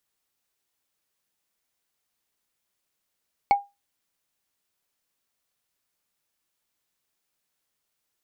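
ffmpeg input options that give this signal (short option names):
-f lavfi -i "aevalsrc='0.282*pow(10,-3*t/0.22)*sin(2*PI*806*t)+0.0891*pow(10,-3*t/0.065)*sin(2*PI*2222.1*t)+0.0282*pow(10,-3*t/0.029)*sin(2*PI*4355.6*t)+0.00891*pow(10,-3*t/0.016)*sin(2*PI*7200*t)+0.00282*pow(10,-3*t/0.01)*sin(2*PI*10752*t)':d=0.45:s=44100"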